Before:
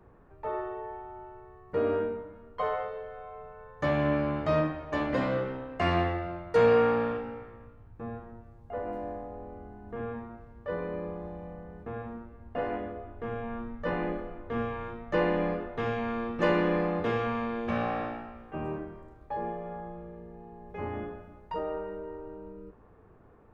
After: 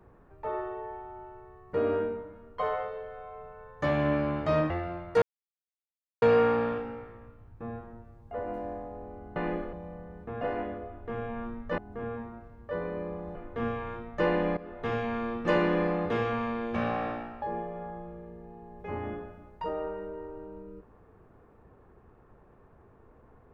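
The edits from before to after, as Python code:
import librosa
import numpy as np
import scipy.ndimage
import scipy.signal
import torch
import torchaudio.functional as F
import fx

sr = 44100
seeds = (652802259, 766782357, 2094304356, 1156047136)

y = fx.edit(x, sr, fx.cut(start_s=4.7, length_s=1.39),
    fx.insert_silence(at_s=6.61, length_s=1.0),
    fx.swap(start_s=9.75, length_s=1.57, other_s=13.92, other_length_s=0.37),
    fx.cut(start_s=12.0, length_s=0.55),
    fx.fade_in_from(start_s=15.51, length_s=0.29, floor_db=-17.5),
    fx.cut(start_s=18.36, length_s=0.96), tone=tone)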